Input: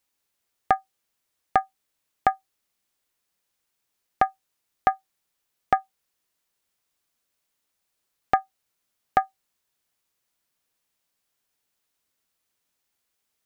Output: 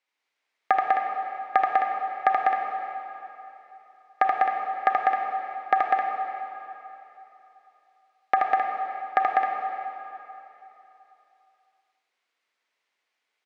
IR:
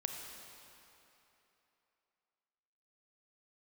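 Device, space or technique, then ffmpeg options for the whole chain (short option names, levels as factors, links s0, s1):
station announcement: -filter_complex "[0:a]highpass=410,lowpass=3900,equalizer=f=2100:t=o:w=0.44:g=6,aecho=1:1:78.72|198.3|262.4:0.708|0.708|0.398[s0];[1:a]atrim=start_sample=2205[s1];[s0][s1]afir=irnorm=-1:irlink=0"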